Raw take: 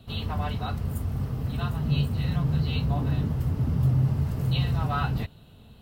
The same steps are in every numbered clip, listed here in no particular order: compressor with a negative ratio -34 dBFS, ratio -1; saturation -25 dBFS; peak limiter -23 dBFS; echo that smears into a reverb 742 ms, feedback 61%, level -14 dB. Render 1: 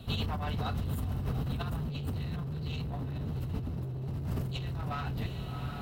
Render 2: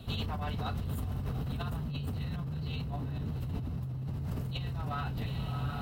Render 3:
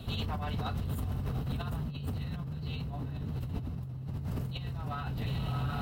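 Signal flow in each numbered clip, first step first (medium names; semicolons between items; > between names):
saturation > peak limiter > echo that smears into a reverb > compressor with a negative ratio; echo that smears into a reverb > peak limiter > compressor with a negative ratio > saturation; echo that smears into a reverb > compressor with a negative ratio > peak limiter > saturation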